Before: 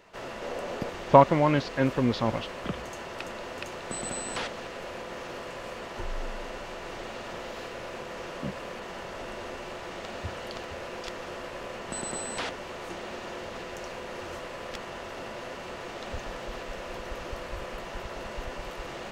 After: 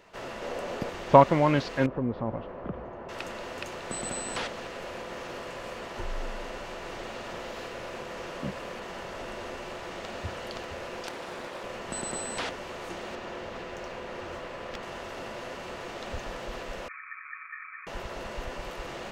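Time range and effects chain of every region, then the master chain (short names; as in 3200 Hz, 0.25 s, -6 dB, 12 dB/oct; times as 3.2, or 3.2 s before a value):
1.86–3.09 LPF 1000 Hz + compressor 1.5:1, threshold -32 dBFS
11.07–11.64 HPF 170 Hz 24 dB/oct + Doppler distortion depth 0.57 ms
13.15–14.83 median filter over 3 samples + high shelf 5800 Hz -8.5 dB
16.88–17.87 rippled Chebyshev low-pass 710 Hz, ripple 3 dB + ring modulator 1800 Hz
whole clip: dry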